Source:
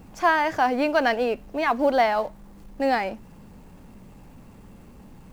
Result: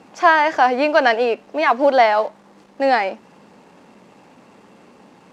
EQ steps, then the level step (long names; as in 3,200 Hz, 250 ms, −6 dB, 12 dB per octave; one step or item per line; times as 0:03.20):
band-pass filter 340–6,200 Hz
+7.0 dB